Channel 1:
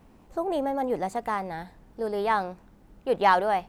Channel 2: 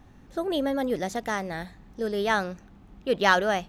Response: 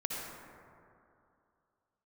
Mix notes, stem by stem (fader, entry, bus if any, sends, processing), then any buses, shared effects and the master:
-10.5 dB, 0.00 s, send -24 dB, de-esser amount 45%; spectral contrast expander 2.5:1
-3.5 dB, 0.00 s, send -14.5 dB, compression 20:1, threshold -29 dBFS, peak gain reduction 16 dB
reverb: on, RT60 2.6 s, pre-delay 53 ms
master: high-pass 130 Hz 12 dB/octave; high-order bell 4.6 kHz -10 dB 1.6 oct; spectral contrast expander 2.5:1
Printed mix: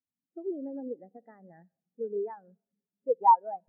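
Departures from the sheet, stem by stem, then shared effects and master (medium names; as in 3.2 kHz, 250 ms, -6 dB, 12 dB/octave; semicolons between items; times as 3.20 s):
stem 1 -10.5 dB -> -4.0 dB; stem 2 -3.5 dB -> +3.0 dB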